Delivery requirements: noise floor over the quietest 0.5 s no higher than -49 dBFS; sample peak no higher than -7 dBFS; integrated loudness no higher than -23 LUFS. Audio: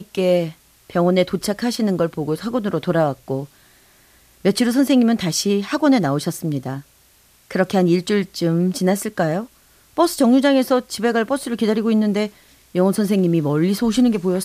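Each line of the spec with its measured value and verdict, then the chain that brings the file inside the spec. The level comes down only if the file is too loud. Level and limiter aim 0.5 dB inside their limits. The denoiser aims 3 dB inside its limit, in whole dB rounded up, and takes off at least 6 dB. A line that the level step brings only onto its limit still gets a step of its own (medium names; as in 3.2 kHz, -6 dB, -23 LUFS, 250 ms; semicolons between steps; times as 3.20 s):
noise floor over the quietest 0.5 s -54 dBFS: pass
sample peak -3.0 dBFS: fail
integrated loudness -19.0 LUFS: fail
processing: trim -4.5 dB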